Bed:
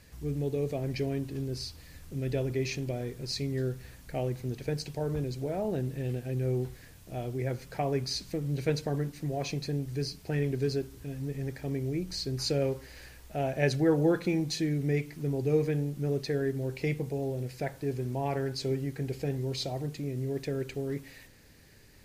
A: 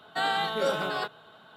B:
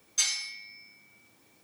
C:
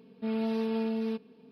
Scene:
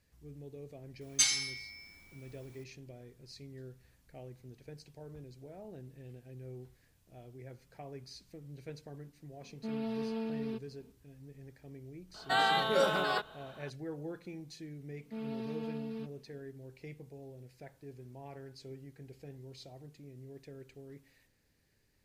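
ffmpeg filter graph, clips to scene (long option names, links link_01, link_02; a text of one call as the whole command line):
ffmpeg -i bed.wav -i cue0.wav -i cue1.wav -i cue2.wav -filter_complex "[3:a]asplit=2[link_01][link_02];[0:a]volume=-17dB[link_03];[2:a]atrim=end=1.63,asetpts=PTS-STARTPTS,volume=-1dB,afade=type=in:duration=0.004:curve=hsin,afade=type=out:start_time=1.626:duration=0.004:curve=hsin,adelay=1010[link_04];[link_01]atrim=end=1.51,asetpts=PTS-STARTPTS,volume=-6.5dB,afade=type=in:duration=0.004:curve=hsin,afade=type=out:start_time=1.506:duration=0.004:curve=hsin,adelay=9410[link_05];[1:a]atrim=end=1.56,asetpts=PTS-STARTPTS,volume=-1dB,afade=type=in:duration=0.004:curve=hsin,afade=type=out:start_time=1.556:duration=0.004:curve=hsin,adelay=12140[link_06];[link_02]atrim=end=1.51,asetpts=PTS-STARTPTS,volume=-9.5dB,afade=type=in:duration=0.004:curve=hsin,afade=type=out:start_time=1.506:duration=0.004:curve=hsin,adelay=14890[link_07];[link_03][link_04][link_05][link_06][link_07]amix=inputs=5:normalize=0" out.wav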